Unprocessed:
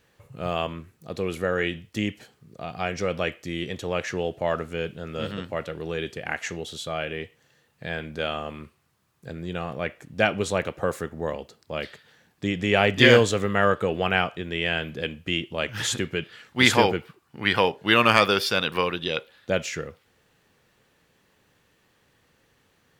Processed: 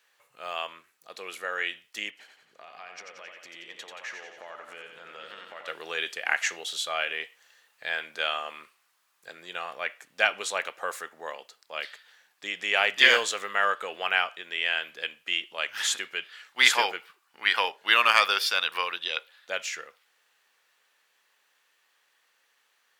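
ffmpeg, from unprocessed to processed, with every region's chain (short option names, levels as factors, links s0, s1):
-filter_complex "[0:a]asettb=1/sr,asplit=3[s0][s1][s2];[s0]atrim=end=2.104[s3];[s1]atrim=start=2.1:end=5.68,asetpts=PTS-STARTPTS,afade=t=in:d=0.004:c=qsin,afade=t=out:st=3.576:d=0.004:c=qsin,highshelf=f=4700:g=-11,acompressor=threshold=0.0158:ratio=12:attack=3.2:release=140:knee=1:detection=peak,aecho=1:1:89|178|267|356|445|534|623:0.531|0.292|0.161|0.0883|0.0486|0.0267|0.0147,atrim=end_sample=157878[s4];[s2]atrim=start=5.676[s5];[s3][s4]acrossfade=d=0.004:c1=hsin:c2=qsin[s6];[s6][s5]acrossfade=d=0.004:c1=qsin:c2=hsin,highpass=1000,dynaudnorm=f=240:g=31:m=2.51,volume=0.891"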